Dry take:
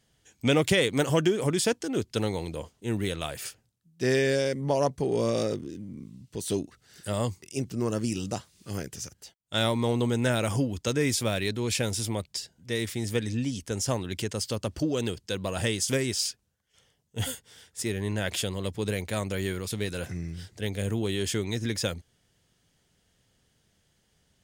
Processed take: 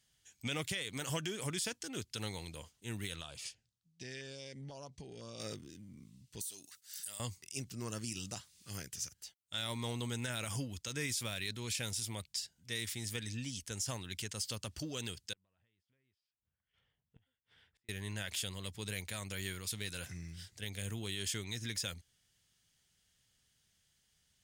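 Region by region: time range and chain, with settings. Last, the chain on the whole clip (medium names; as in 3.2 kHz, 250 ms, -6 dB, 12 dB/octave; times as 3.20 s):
3.21–5.40 s: low-pass 6.2 kHz + compression, threshold -31 dBFS + LFO notch saw down 2 Hz 940–2300 Hz
6.41–7.20 s: expander -59 dBFS + RIAA curve recording + compression 10:1, threshold -37 dBFS
15.33–17.89 s: compression 8:1, threshold -34 dBFS + inverted gate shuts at -37 dBFS, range -28 dB + distance through air 490 m
whole clip: amplifier tone stack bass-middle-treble 5-5-5; peak limiter -30.5 dBFS; trim +4 dB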